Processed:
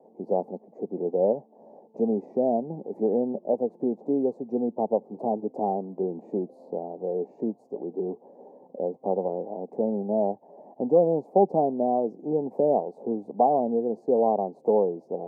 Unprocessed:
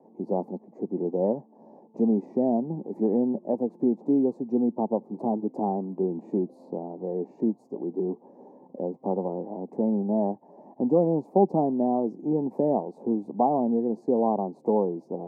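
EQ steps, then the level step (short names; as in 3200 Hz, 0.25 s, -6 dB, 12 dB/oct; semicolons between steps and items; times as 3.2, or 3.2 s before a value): band shelf 570 Hz +8 dB 1.1 oct; dynamic EQ 100 Hz, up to +4 dB, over -50 dBFS, Q 3.9; -4.5 dB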